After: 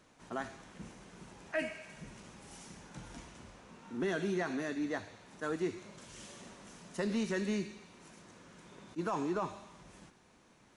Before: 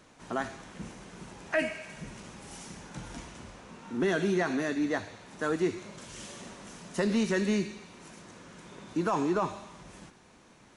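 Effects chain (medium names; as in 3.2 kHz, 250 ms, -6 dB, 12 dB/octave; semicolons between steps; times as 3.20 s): attacks held to a fixed rise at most 520 dB/s; trim -6.5 dB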